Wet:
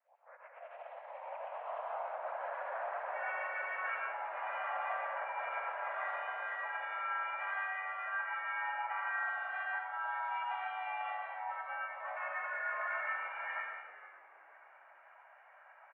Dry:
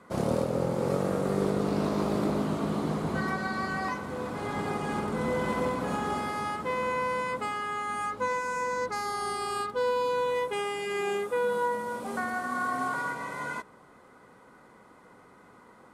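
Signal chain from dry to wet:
turntable start at the beginning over 2.75 s
reverb reduction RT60 1.6 s
compressor whose output falls as the input rises −33 dBFS, ratio −0.5
soft clipping −24 dBFS, distortion −23 dB
bit reduction 12 bits
pitch-shifted copies added −3 semitones −15 dB, +4 semitones −4 dB
comb and all-pass reverb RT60 1.1 s, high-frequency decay 0.7×, pre-delay 65 ms, DRR −1.5 dB
single-sideband voice off tune +340 Hz 270–2,200 Hz
echo with shifted repeats 462 ms, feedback 31%, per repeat −94 Hz, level −16 dB
level −8 dB

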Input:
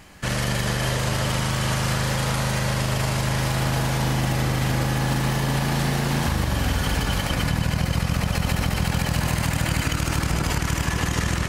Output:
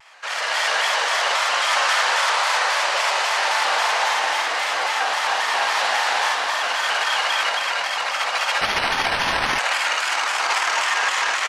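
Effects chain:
loudspeakers that aren't time-aligned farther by 19 metres −1 dB, 94 metres −3 dB
automatic gain control gain up to 8 dB
high-pass filter 710 Hz 24 dB per octave
0:08.61–0:09.59: bad sample-rate conversion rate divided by 6×, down none, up hold
high-frequency loss of the air 87 metres
pitch modulation by a square or saw wave square 3.7 Hz, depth 100 cents
level +1.5 dB

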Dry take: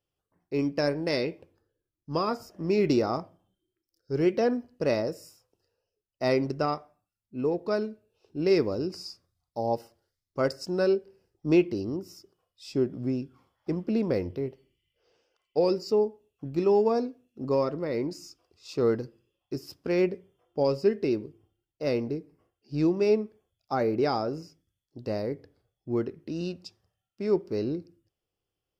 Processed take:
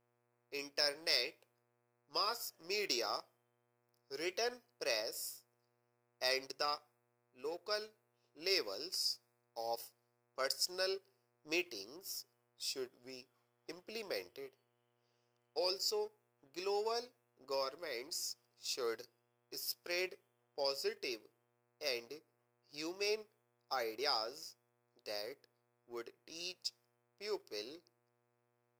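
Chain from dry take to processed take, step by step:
first difference
hum with harmonics 120 Hz, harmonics 22, −79 dBFS −5 dB per octave
low shelf with overshoot 310 Hz −6.5 dB, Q 1.5
leveller curve on the samples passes 1
one half of a high-frequency compander decoder only
level +3.5 dB

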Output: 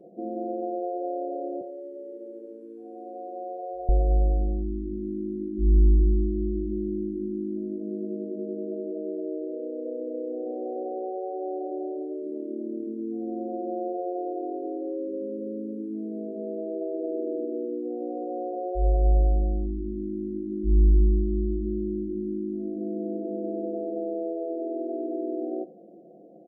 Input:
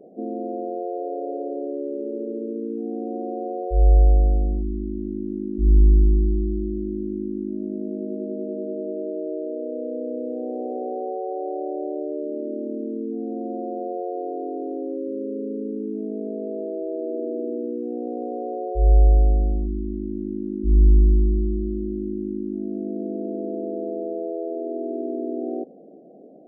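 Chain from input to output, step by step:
0:01.61–0:03.89: high-pass filter 600 Hz 12 dB per octave
far-end echo of a speakerphone 90 ms, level −20 dB
flanger 0.87 Hz, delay 5.4 ms, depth 3.9 ms, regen −74%
comb filter 5.8 ms, depth 62%

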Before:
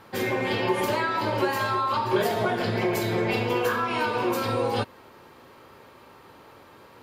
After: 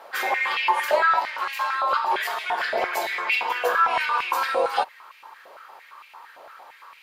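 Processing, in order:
speech leveller 0.5 s
0:01.19–0:01.73: tube saturation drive 22 dB, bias 0.75
high-pass on a step sequencer 8.8 Hz 640–2,400 Hz

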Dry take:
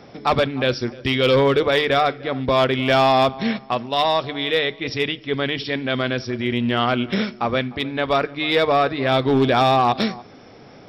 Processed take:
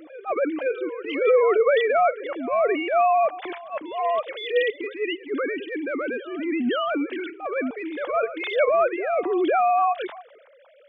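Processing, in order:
three sine waves on the formant tracks
transient designer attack −12 dB, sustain +3 dB
backwards echo 516 ms −17 dB
level −1.5 dB

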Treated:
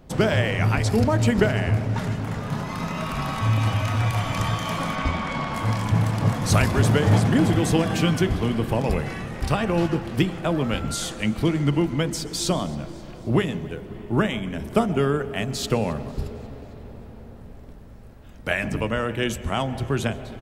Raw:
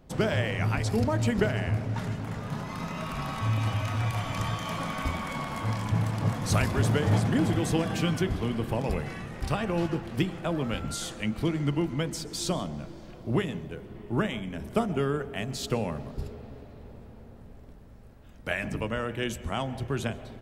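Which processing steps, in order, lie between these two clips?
0:04.95–0:05.54: low-pass filter 5,600 Hz 12 dB per octave
on a send: repeating echo 269 ms, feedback 56%, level −23 dB
on the sum: level +6 dB

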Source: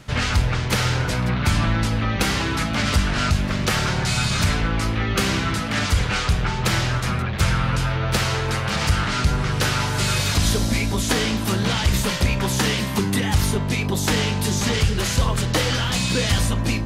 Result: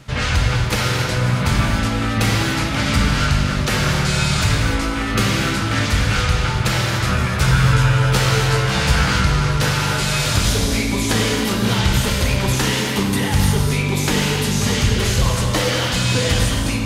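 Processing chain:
0:06.99–0:09.17: double-tracking delay 16 ms −3 dB
convolution reverb, pre-delay 3 ms, DRR 0 dB

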